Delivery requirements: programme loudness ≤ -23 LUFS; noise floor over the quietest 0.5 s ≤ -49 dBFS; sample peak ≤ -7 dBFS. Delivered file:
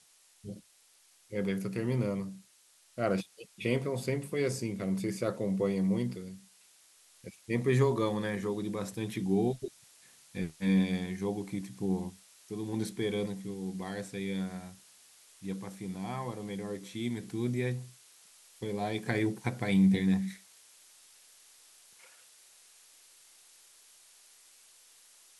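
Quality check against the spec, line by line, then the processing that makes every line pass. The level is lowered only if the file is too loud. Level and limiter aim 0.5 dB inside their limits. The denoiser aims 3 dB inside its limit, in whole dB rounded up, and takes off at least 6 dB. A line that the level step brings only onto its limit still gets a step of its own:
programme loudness -33.0 LUFS: pass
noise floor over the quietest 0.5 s -64 dBFS: pass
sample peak -14.5 dBFS: pass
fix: none needed

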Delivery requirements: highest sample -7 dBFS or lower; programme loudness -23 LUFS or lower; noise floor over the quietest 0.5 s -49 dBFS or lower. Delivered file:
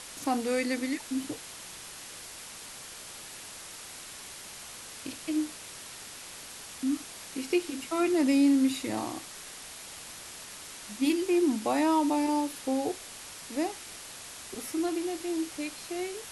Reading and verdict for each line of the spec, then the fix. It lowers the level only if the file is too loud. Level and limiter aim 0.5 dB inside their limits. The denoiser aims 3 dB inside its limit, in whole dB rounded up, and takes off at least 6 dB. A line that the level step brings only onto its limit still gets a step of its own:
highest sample -15.5 dBFS: pass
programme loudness -32.0 LUFS: pass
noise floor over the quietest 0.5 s -45 dBFS: fail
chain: noise reduction 7 dB, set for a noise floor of -45 dBFS

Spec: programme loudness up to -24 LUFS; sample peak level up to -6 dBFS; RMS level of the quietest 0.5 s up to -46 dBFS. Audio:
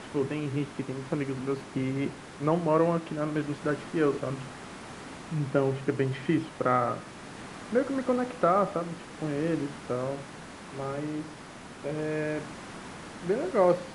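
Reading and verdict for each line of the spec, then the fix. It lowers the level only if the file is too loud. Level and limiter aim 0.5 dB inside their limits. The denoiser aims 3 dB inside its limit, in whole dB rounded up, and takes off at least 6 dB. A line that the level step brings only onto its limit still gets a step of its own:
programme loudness -30.0 LUFS: pass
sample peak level -11.0 dBFS: pass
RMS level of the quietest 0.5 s -45 dBFS: fail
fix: noise reduction 6 dB, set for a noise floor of -45 dBFS

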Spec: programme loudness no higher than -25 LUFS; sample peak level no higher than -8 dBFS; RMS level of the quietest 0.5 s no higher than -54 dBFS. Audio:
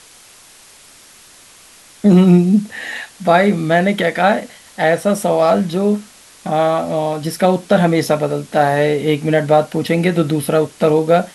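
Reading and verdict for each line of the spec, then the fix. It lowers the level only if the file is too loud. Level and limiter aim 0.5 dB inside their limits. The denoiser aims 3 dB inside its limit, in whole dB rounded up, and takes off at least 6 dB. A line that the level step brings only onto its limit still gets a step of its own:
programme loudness -15.5 LUFS: fail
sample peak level -1.5 dBFS: fail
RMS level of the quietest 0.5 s -44 dBFS: fail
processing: noise reduction 6 dB, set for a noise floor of -44 dBFS; trim -10 dB

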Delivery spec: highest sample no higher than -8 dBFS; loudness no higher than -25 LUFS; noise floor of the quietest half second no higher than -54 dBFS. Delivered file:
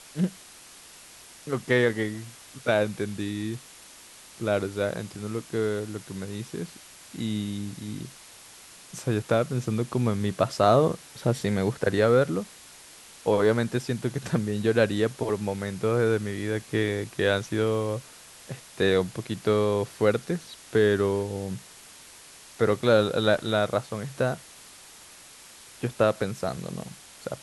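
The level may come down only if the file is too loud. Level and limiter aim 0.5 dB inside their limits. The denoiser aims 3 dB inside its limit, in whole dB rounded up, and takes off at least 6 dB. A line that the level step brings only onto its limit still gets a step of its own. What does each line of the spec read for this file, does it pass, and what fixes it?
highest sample -6.5 dBFS: fail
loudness -26.5 LUFS: pass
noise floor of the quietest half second -49 dBFS: fail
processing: noise reduction 8 dB, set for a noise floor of -49 dBFS; peak limiter -8.5 dBFS

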